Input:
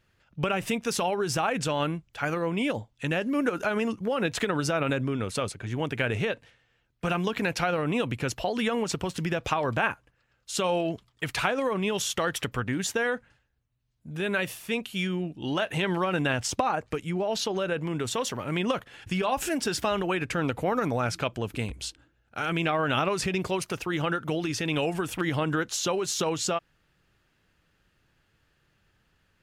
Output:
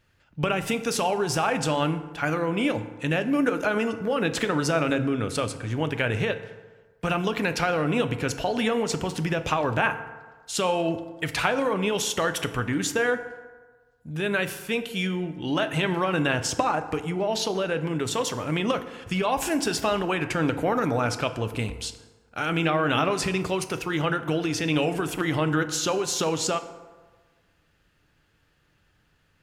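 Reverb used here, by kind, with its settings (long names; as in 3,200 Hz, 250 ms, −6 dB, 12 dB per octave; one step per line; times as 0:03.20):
feedback delay network reverb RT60 1.4 s, low-frequency decay 0.85×, high-frequency decay 0.5×, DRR 9 dB
level +2 dB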